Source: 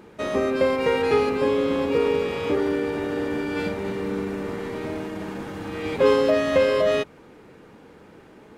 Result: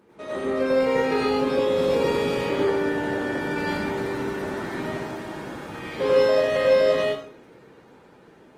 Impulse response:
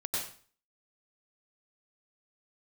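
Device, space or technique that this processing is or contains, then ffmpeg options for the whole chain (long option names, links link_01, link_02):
far-field microphone of a smart speaker: -filter_complex "[0:a]asettb=1/sr,asplit=3[link_01][link_02][link_03];[link_01]atrim=end=1.684[link_04];[link_02]atrim=start=1.68:end=2.34,asetpts=PTS-STARTPTS,afade=type=in:duration=0.004:curve=qsin,afade=type=out:start_time=0.656:duration=0.004:curve=qsin,bass=frequency=250:gain=5,treble=frequency=4000:gain=6[link_05];[link_03]atrim=start=2.336[link_06];[link_04][link_05]acrossfade=duration=0.004:curve1=hsin:curve2=qsin[link_07];[link_07][link_06]acrossfade=duration=0.004:curve1=qsin:curve2=hsin[link_08];[1:a]atrim=start_sample=2205[link_09];[link_08][link_09]afir=irnorm=-1:irlink=0,highpass=frequency=130:poles=1,dynaudnorm=framelen=150:gausssize=13:maxgain=7dB,volume=-7dB" -ar 48000 -c:a libopus -b:a 20k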